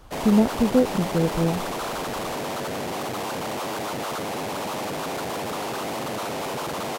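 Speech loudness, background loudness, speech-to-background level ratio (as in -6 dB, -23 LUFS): -22.5 LUFS, -29.5 LUFS, 7.0 dB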